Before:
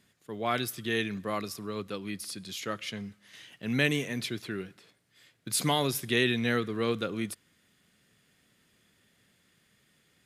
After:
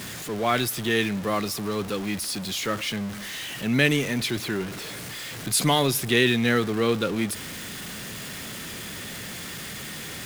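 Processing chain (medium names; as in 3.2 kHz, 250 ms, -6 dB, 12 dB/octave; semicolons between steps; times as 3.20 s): jump at every zero crossing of -35.5 dBFS; trim +5 dB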